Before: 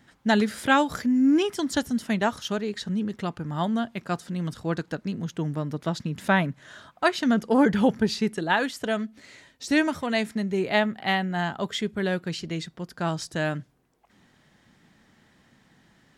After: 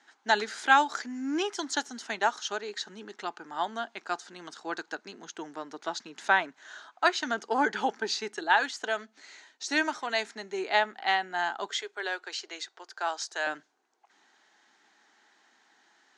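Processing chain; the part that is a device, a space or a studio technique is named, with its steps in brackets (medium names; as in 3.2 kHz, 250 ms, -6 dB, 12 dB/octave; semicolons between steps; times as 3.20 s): phone speaker on a table (cabinet simulation 360–7800 Hz, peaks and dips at 530 Hz -10 dB, 830 Hz +6 dB, 1.5 kHz +5 dB, 4.2 kHz +4 dB, 6.4 kHz +7 dB); 11.78–13.47 s: high-pass 410 Hz 24 dB/octave; trim -3 dB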